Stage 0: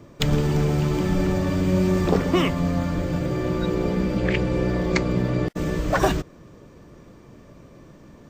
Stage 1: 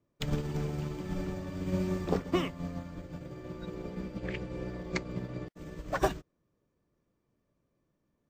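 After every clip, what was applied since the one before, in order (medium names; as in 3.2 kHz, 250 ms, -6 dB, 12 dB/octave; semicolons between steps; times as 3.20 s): upward expansion 2.5:1, over -32 dBFS; trim -6 dB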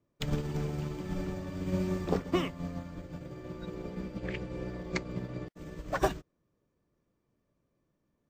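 no audible change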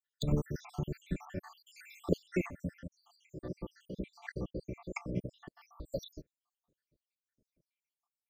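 random holes in the spectrogram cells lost 81%; trim +2 dB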